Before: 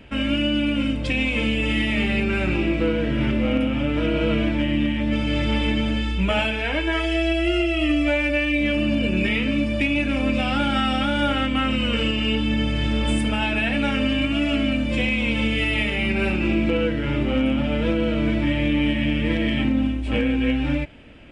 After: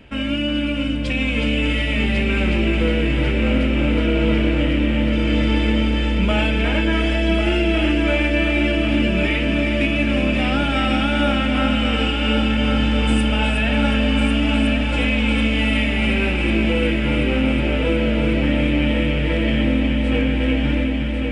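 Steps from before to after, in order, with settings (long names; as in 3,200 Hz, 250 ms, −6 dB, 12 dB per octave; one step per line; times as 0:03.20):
echo machine with several playback heads 366 ms, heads first and third, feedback 74%, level −7.5 dB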